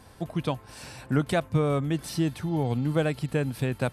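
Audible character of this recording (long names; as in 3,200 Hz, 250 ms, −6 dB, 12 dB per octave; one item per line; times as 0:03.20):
background noise floor −51 dBFS
spectral slope −6.5 dB per octave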